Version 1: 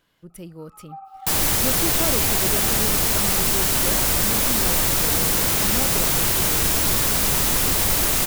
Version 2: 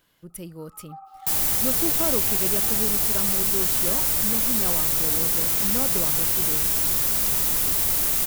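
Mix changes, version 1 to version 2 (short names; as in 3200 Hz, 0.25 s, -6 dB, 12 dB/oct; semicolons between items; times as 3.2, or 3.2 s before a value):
first sound: add band-pass 1100 Hz, Q 1.7; second sound -9.0 dB; master: add high shelf 7900 Hz +10 dB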